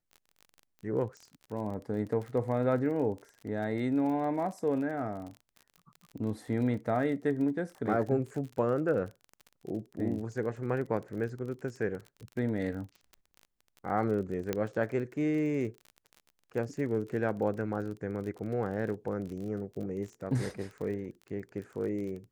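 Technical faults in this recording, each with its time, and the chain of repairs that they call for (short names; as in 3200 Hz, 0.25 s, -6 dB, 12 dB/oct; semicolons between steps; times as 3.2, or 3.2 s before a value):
crackle 34/s -39 dBFS
14.53 pop -16 dBFS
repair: de-click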